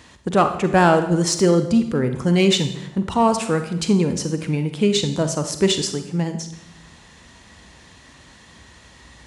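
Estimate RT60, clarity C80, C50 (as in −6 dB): 0.80 s, 12.0 dB, 9.0 dB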